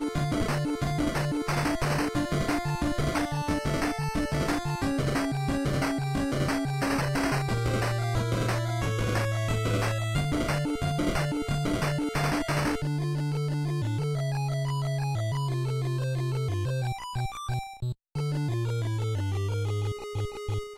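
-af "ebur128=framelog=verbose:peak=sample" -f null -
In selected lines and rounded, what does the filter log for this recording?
Integrated loudness:
  I:         -28.9 LUFS
  Threshold: -38.9 LUFS
Loudness range:
  LRA:         3.1 LU
  Threshold: -48.8 LUFS
  LRA low:   -31.0 LUFS
  LRA high:  -27.9 LUFS
Sample peak:
  Peak:      -15.2 dBFS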